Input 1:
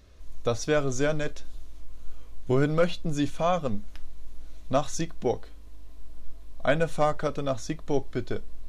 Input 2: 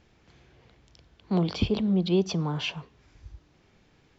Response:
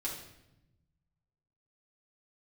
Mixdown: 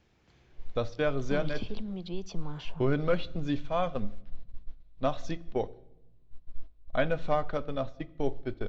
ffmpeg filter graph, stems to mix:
-filter_complex "[0:a]agate=range=-19dB:threshold=-28dB:ratio=16:detection=peak,lowpass=f=4.4k:w=0.5412,lowpass=f=4.4k:w=1.3066,adelay=300,volume=-5dB,asplit=2[a][b];[b]volume=-16dB[c];[1:a]acrossover=split=490|1300[d][e][f];[d]acompressor=threshold=-32dB:ratio=4[g];[e]acompressor=threshold=-45dB:ratio=4[h];[f]acompressor=threshold=-42dB:ratio=4[i];[g][h][i]amix=inputs=3:normalize=0,volume=-5.5dB[j];[2:a]atrim=start_sample=2205[k];[c][k]afir=irnorm=-1:irlink=0[l];[a][j][l]amix=inputs=3:normalize=0"

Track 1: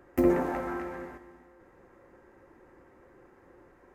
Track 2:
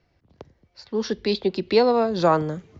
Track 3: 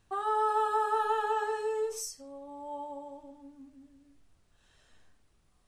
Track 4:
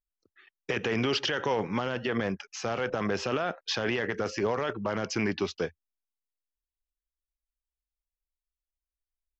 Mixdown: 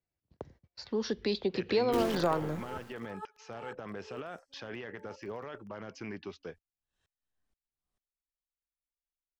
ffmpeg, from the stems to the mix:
-filter_complex "[0:a]acrusher=bits=5:dc=4:mix=0:aa=0.000001,acrossover=split=260[a][b];[b]acompressor=threshold=-25dB:ratio=6[c];[a][c]amix=inputs=2:normalize=0,adelay=1750,volume=-7.5dB[d];[1:a]agate=range=-25dB:threshold=-55dB:ratio=16:detection=peak,acompressor=threshold=-32dB:ratio=2,volume=-1dB[e];[2:a]aeval=exprs='val(0)*pow(10,-36*if(lt(mod(-2.1*n/s,1),2*abs(-2.1)/1000),1-mod(-2.1*n/s,1)/(2*abs(-2.1)/1000),(mod(-2.1*n/s,1)-2*abs(-2.1)/1000)/(1-2*abs(-2.1)/1000))/20)':c=same,adelay=2300,volume=-11.5dB[f];[3:a]highshelf=f=5.3k:g=-10,adelay=850,volume=-12.5dB[g];[d][e][f][g]amix=inputs=4:normalize=0"

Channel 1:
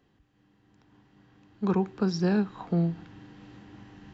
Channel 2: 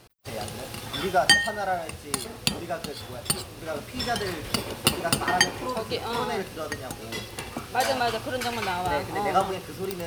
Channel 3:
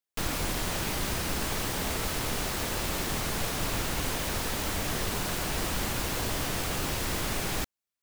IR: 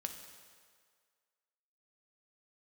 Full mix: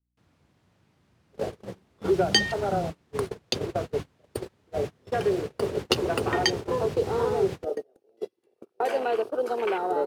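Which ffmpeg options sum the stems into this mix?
-filter_complex "[0:a]acompressor=threshold=-29dB:ratio=5,aeval=exprs='val(0)+0.00447*(sin(2*PI*60*n/s)+sin(2*PI*2*60*n/s)/2+sin(2*PI*3*60*n/s)/3+sin(2*PI*4*60*n/s)/4+sin(2*PI*5*60*n/s)/5)':c=same,tiltshelf=f=1.3k:g=9,volume=-11.5dB[a];[1:a]afwtdn=0.0316,highpass=f=410:t=q:w=4.1,adelay=1050,volume=0.5dB[b];[2:a]highpass=f=94:w=0.5412,highpass=f=94:w=1.3066,aemphasis=mode=reproduction:type=bsi,volume=-6dB[c];[a][b][c]amix=inputs=3:normalize=0,agate=range=-30dB:threshold=-27dB:ratio=16:detection=peak,acrossover=split=370|3000[d][e][f];[e]acompressor=threshold=-26dB:ratio=6[g];[d][g][f]amix=inputs=3:normalize=0"

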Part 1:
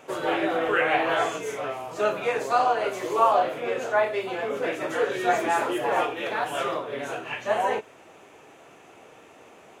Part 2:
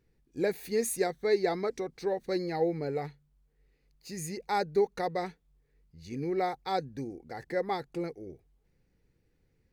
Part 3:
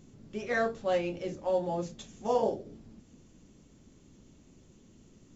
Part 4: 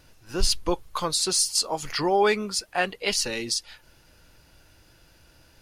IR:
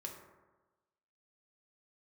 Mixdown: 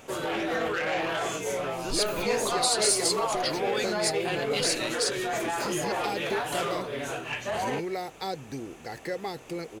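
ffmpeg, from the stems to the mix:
-filter_complex "[0:a]lowshelf=f=200:g=11.5,alimiter=limit=-18dB:level=0:latency=1:release=17,asoftclip=type=tanh:threshold=-21dB,volume=-3dB[a];[1:a]acrossover=split=590|5800[b][c][d];[b]acompressor=threshold=-36dB:ratio=4[e];[c]acompressor=threshold=-41dB:ratio=4[f];[d]acompressor=threshold=-57dB:ratio=4[g];[e][f][g]amix=inputs=3:normalize=0,adelay=1550,volume=2.5dB[h];[2:a]volume=-6dB[i];[3:a]lowpass=7.7k,alimiter=limit=-16.5dB:level=0:latency=1,aexciter=amount=1.3:drive=5.7:freq=3.1k,adelay=1500,volume=-8dB[j];[a][h][i][j]amix=inputs=4:normalize=0,highshelf=f=3k:g=10"

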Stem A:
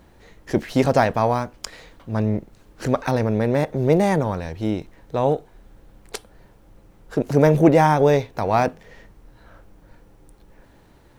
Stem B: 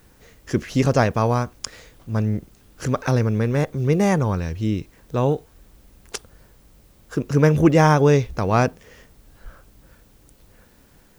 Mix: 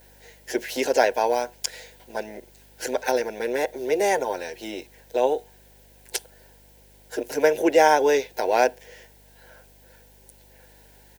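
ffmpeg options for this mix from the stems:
-filter_complex "[0:a]aemphasis=mode=production:type=50fm,acompressor=threshold=-18dB:ratio=6,volume=-4.5dB[a];[1:a]adelay=7.9,volume=1dB[b];[a][b]amix=inputs=2:normalize=0,highpass=f=390:w=0.5412,highpass=f=390:w=1.3066,aeval=exprs='val(0)+0.00178*(sin(2*PI*50*n/s)+sin(2*PI*2*50*n/s)/2+sin(2*PI*3*50*n/s)/3+sin(2*PI*4*50*n/s)/4+sin(2*PI*5*50*n/s)/5)':c=same,asuperstop=centerf=1200:order=4:qfactor=2.7"

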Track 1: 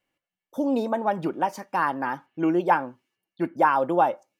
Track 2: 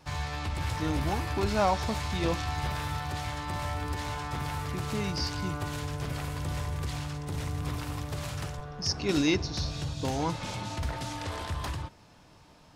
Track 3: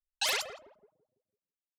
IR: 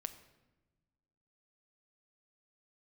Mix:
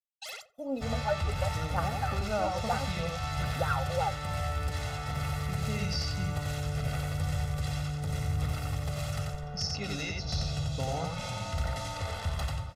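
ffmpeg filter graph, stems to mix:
-filter_complex "[0:a]aphaser=in_gain=1:out_gain=1:delay=4.4:decay=0.79:speed=0.56:type=triangular,volume=-18dB,asplit=2[a][b];[b]volume=-5.5dB[c];[1:a]alimiter=limit=-21dB:level=0:latency=1:release=239,adelay=750,volume=-4dB,asplit=2[d][e];[e]volume=-3.5dB[f];[2:a]volume=-17dB,asplit=3[g][h][i];[h]volume=-6dB[j];[i]volume=-16dB[k];[3:a]atrim=start_sample=2205[l];[c][j]amix=inputs=2:normalize=0[m];[m][l]afir=irnorm=-1:irlink=0[n];[f][k]amix=inputs=2:normalize=0,aecho=0:1:89:1[o];[a][d][g][n][o]amix=inputs=5:normalize=0,agate=range=-33dB:threshold=-44dB:ratio=3:detection=peak,aecho=1:1:1.5:0.87"

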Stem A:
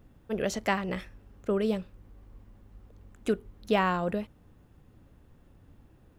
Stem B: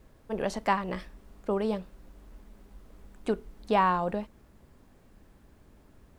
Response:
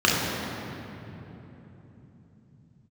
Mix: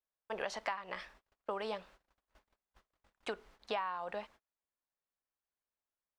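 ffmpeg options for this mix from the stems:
-filter_complex "[0:a]volume=-14dB[a];[1:a]lowshelf=f=350:g=-4,volume=2dB,asplit=2[b][c];[c]apad=whole_len=272828[d];[a][d]sidechaingate=range=-33dB:threshold=-50dB:ratio=16:detection=peak[e];[e][b]amix=inputs=2:normalize=0,agate=range=-34dB:threshold=-47dB:ratio=16:detection=peak,acrossover=split=590 6300:gain=0.126 1 0.224[f][g][h];[f][g][h]amix=inputs=3:normalize=0,acompressor=threshold=-34dB:ratio=12"

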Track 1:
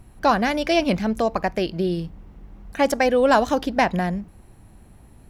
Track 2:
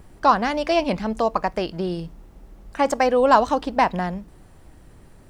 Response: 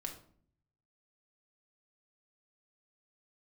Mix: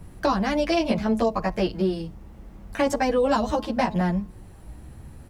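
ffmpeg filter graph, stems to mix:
-filter_complex "[0:a]volume=0dB[a];[1:a]equalizer=f=79:w=0.51:g=10,asplit=2[b][c];[c]adelay=8.7,afreqshift=0.73[d];[b][d]amix=inputs=2:normalize=1,adelay=9.2,volume=1dB,asplit=2[e][f];[f]apad=whole_len=233667[g];[a][g]sidechaincompress=threshold=-25dB:ratio=8:attack=16:release=758[h];[h][e]amix=inputs=2:normalize=0,bandreject=f=213.1:t=h:w=4,bandreject=f=426.2:t=h:w=4,bandreject=f=639.3:t=h:w=4,bandreject=f=852.4:t=h:w=4,bandreject=f=1.0655k:t=h:w=4,acrossover=split=390|3000[i][j][k];[j]acompressor=threshold=-22dB:ratio=6[l];[i][l][k]amix=inputs=3:normalize=0"

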